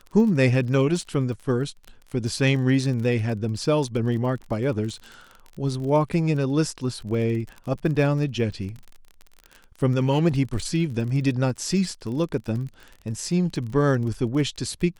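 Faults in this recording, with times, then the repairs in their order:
crackle 31 per s -32 dBFS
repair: de-click

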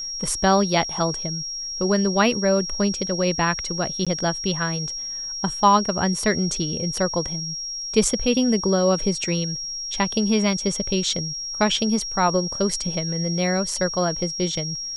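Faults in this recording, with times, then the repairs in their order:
whine 5.6 kHz -28 dBFS
4.05–4.07 s: dropout 16 ms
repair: band-stop 5.6 kHz, Q 30; interpolate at 4.05 s, 16 ms

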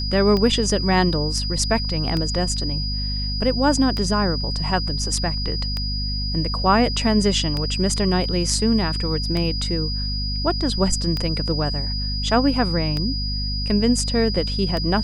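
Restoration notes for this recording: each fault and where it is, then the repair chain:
hum 50 Hz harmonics 5 -26 dBFS
tick 33 1/3 rpm -12 dBFS
whine 4.9 kHz -27 dBFS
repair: de-click; band-stop 4.9 kHz, Q 30; de-hum 50 Hz, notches 5

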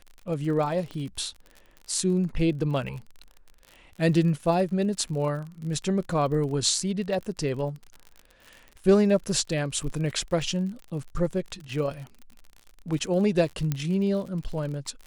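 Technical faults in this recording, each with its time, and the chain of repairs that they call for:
crackle 49 per s -35 dBFS
0.91 s: pop -25 dBFS
13.72 s: pop -13 dBFS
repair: de-click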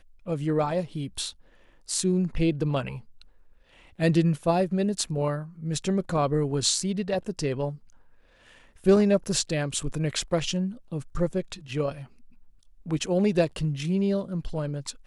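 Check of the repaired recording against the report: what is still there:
0.91 s: pop

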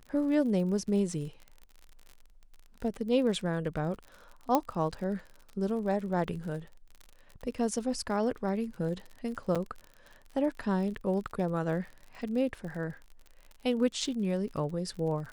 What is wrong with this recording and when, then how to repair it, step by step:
crackle 46 per s -39 dBFS
4.55 s: pop -12 dBFS
9.55–9.56 s: dropout 6.3 ms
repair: de-click; interpolate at 9.55 s, 6.3 ms

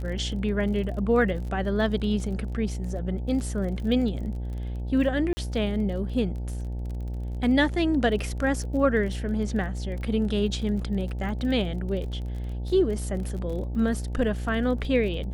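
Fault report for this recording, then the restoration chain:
buzz 60 Hz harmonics 15 -31 dBFS
crackle 32 per s -35 dBFS
5.33–5.37 s: dropout 40 ms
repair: de-click; de-hum 60 Hz, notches 15; interpolate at 5.33 s, 40 ms

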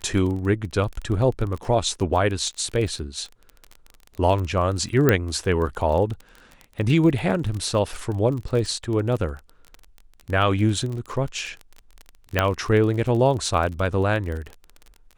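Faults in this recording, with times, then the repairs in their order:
crackle 25 per s -28 dBFS
5.09 s: pop -4 dBFS
12.39 s: pop -5 dBFS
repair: de-click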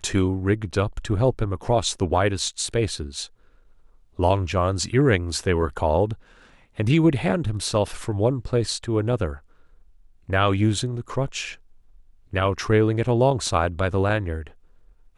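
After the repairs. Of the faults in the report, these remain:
5.09 s: pop

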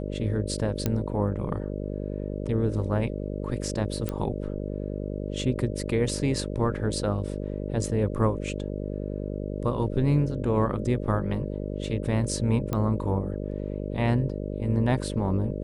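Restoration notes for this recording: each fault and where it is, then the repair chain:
buzz 50 Hz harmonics 12 -32 dBFS
0.86 s: pop -11 dBFS
4.09 s: pop -16 dBFS
12.73 s: pop -15 dBFS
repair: de-click; de-hum 50 Hz, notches 12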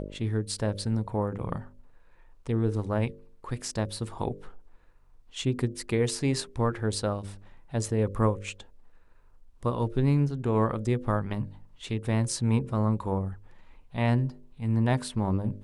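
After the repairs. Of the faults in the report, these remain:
nothing left

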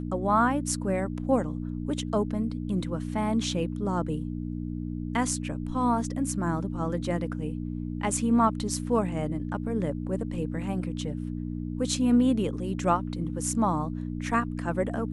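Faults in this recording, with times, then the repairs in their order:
hum 60 Hz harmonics 5 -33 dBFS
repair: de-hum 60 Hz, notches 5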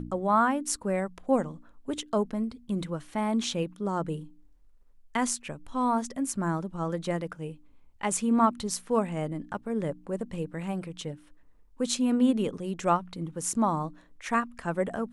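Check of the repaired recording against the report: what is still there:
nothing left

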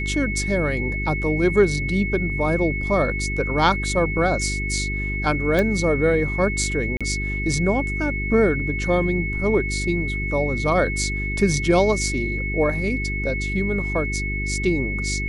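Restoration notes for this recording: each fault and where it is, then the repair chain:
hum 50 Hz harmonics 8 -27 dBFS
whine 2.2 kHz -27 dBFS
5.59 s: pop -9 dBFS
6.97–7.01 s: dropout 36 ms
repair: de-click; de-hum 50 Hz, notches 8; band-stop 2.2 kHz, Q 30; interpolate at 6.97 s, 36 ms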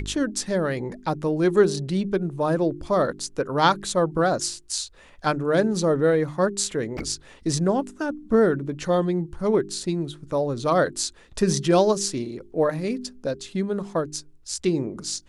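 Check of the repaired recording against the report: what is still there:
nothing left

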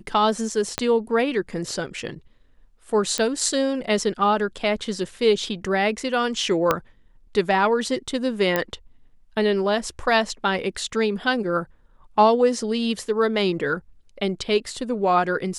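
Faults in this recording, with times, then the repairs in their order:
0.78 s: pop -7 dBFS
3.18 s: pop -8 dBFS
6.71 s: pop -5 dBFS
8.56 s: pop -7 dBFS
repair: de-click

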